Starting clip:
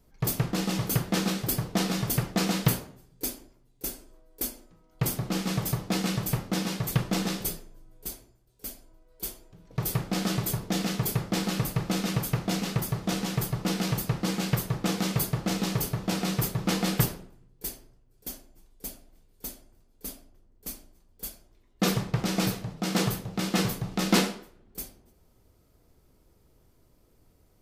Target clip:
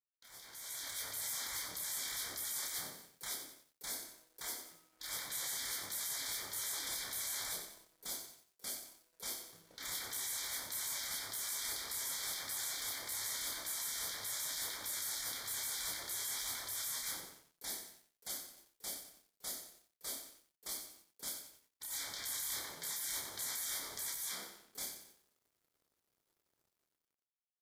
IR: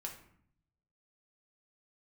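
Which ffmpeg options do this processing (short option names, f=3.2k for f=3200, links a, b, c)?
-filter_complex "[0:a]highpass=f=650:p=1,afftfilt=real='re*lt(hypot(re,im),0.0141)':imag='im*lt(hypot(re,im),0.0141)':win_size=1024:overlap=0.75,dynaudnorm=f=220:g=7:m=10dB,asplit=2[a][b];[b]adelay=230,highpass=300,lowpass=3.4k,asoftclip=type=hard:threshold=-32dB,volume=-23dB[c];[a][c]amix=inputs=2:normalize=0,flanger=delay=0.5:depth=7.8:regen=-69:speed=1.2:shape=triangular,asuperstop=centerf=2700:order=20:qfactor=3.7,asplit=2[d][e];[e]adelay=29,volume=-4dB[f];[d][f]amix=inputs=2:normalize=0,asplit=2[g][h];[h]aecho=0:1:91|182|273|364|455|546:0.398|0.203|0.104|0.0528|0.0269|0.0137[i];[g][i]amix=inputs=2:normalize=0,aeval=exprs='sgn(val(0))*max(abs(val(0))-0.00106,0)':c=same,adynamicequalizer=threshold=0.00251:dfrequency=1600:dqfactor=0.7:tfrequency=1600:tqfactor=0.7:attack=5:release=100:ratio=0.375:range=2:mode=boostabove:tftype=highshelf,volume=-6dB"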